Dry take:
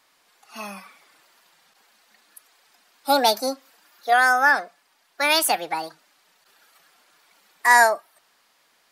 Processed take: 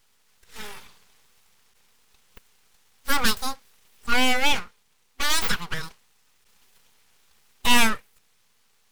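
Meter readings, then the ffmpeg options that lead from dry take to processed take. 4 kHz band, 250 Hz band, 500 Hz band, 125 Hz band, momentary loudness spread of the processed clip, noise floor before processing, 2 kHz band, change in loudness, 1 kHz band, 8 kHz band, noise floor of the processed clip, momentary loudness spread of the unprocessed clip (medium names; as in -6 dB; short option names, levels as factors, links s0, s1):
+2.0 dB, +3.0 dB, -10.5 dB, no reading, 21 LU, -64 dBFS, -6.0 dB, -4.0 dB, -8.5 dB, -1.0 dB, -64 dBFS, 21 LU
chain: -af "aeval=exprs='abs(val(0))':c=same,superequalizer=6b=0.447:8b=0.562"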